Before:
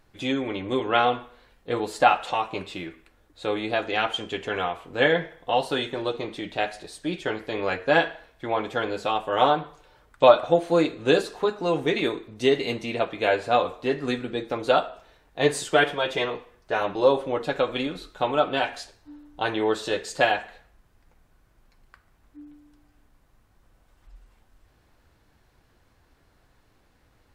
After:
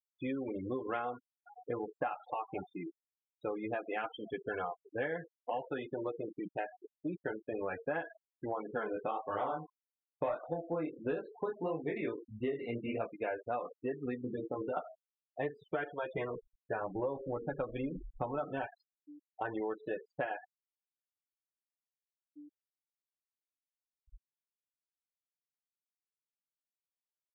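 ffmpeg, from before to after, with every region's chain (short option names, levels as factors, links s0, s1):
-filter_complex "[0:a]asettb=1/sr,asplit=3[s0][s1][s2];[s0]atrim=end=0.864[s3];[s1]atrim=start=0.86:end=5.86,asetpts=PTS-STARTPTS,afade=t=in:d=0.004:c=qsin,afade=t=out:st=4.996:d=0.004:c=qsin,highshelf=f=5400:g=3.5,aecho=1:1:518:0.0841,atrim=end_sample=220500[s4];[s2]atrim=start=5.856[s5];[s3][s4]acrossfade=d=0.004:c1=hsin:c2=qsin[s6];[s6][s5]acrossfade=d=0.004:c1=qsin:c2=hsin,asettb=1/sr,asplit=3[s7][s8][s9];[s7]atrim=end=8.674[s10];[s8]atrim=start=8.67:end=13.12,asetpts=PTS-STARTPTS,afade=t=in:d=0.004:c=qsin,afade=t=out:st=4.446:d=0.004:c=qsin,acontrast=62,flanger=delay=18.5:depth=7.5:speed=1.6[s11];[s9]atrim=start=13.116[s12];[s10][s11]acrossfade=d=0.004:c1=hsin:c2=qsin[s13];[s13][s12]acrossfade=d=0.004:c1=qsin:c2=hsin,asettb=1/sr,asplit=3[s14][s15][s16];[s14]atrim=end=14.214[s17];[s15]atrim=start=14.21:end=14.77,asetpts=PTS-STARTPTS,afade=t=in:d=0.004:c=qsin,afade=t=out:st=0.556:d=0.004:c=qsin,acompressor=threshold=0.0562:ratio=8:attack=3.2:release=140:knee=1:detection=peak,asplit=2[s18][s19];[s19]adelay=24,volume=0.708[s20];[s18][s20]amix=inputs=2:normalize=0,atrim=end_sample=24696[s21];[s16]atrim=start=14.766[s22];[s17][s21]acrossfade=d=0.004:c1=hsin:c2=qsin[s23];[s23][s22]acrossfade=d=0.004:c1=qsin:c2=hsin,asettb=1/sr,asplit=3[s24][s25][s26];[s24]atrim=end=16.154[s27];[s25]atrim=start=16.15:end=18.67,asetpts=PTS-STARTPTS,afade=t=in:d=0.004:c=qsin,afade=t=out:st=2.516:d=0.004:c=qsin,lowshelf=f=190:g=11,bandreject=f=50:t=h:w=6,bandreject=f=100:t=h:w=6,bandreject=f=150:t=h:w=6,bandreject=f=200:t=h:w=6,bandreject=f=250:t=h:w=6,bandreject=f=300:t=h:w=6,bandreject=f=350:t=h:w=6,bandreject=f=400:t=h:w=6,bandreject=f=450:t=h:w=6[s28];[s26]atrim=start=18.666[s29];[s27][s28]acrossfade=d=0.004:c1=hsin:c2=qsin[s30];[s30][s29]acrossfade=d=0.004:c1=qsin:c2=hsin,afftfilt=real='re*gte(hypot(re,im),0.0631)':imag='im*gte(hypot(re,im),0.0631)':win_size=1024:overlap=0.75,lowpass=f=2200:w=0.5412,lowpass=f=2200:w=1.3066,acompressor=threshold=0.0398:ratio=6,volume=0.531"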